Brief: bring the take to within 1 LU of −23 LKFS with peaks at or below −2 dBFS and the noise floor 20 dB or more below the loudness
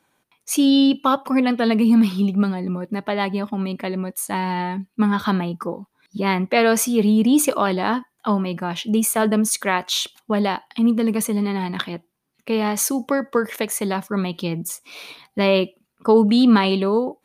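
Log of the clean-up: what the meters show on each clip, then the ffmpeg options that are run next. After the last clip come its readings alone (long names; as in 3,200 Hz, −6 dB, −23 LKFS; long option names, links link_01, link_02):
integrated loudness −20.5 LKFS; sample peak −4.5 dBFS; target loudness −23.0 LKFS
→ -af "volume=-2.5dB"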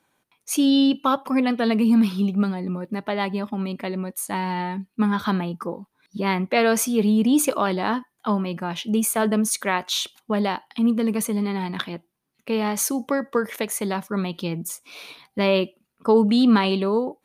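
integrated loudness −23.0 LKFS; sample peak −7.0 dBFS; background noise floor −74 dBFS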